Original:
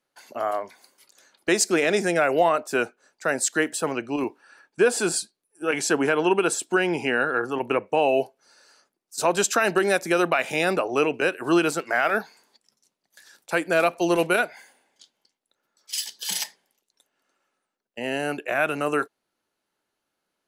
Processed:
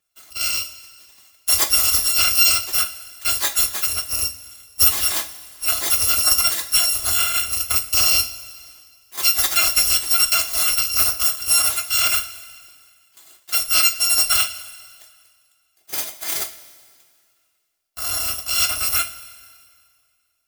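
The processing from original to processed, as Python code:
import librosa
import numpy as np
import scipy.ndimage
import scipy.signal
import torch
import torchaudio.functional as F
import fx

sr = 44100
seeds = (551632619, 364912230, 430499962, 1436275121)

y = fx.bit_reversed(x, sr, seeds[0], block=256)
y = fx.rev_double_slope(y, sr, seeds[1], early_s=0.23, late_s=2.0, knee_db=-18, drr_db=3.5)
y = y * 10.0 ** (2.5 / 20.0)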